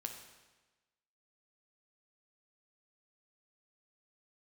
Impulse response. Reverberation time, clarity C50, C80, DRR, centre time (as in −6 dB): 1.2 s, 6.5 dB, 8.5 dB, 4.0 dB, 28 ms